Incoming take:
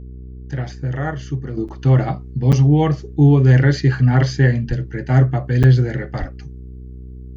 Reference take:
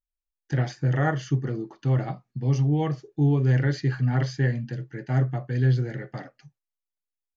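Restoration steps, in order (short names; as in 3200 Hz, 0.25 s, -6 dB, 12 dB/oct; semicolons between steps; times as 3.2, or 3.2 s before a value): de-hum 62.8 Hz, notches 7; 4.68–4.8 HPF 140 Hz 24 dB/oct; 6.19–6.31 HPF 140 Hz 24 dB/oct; interpolate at 1.68/2.52/5.63, 7.3 ms; 1.57 gain correction -9.5 dB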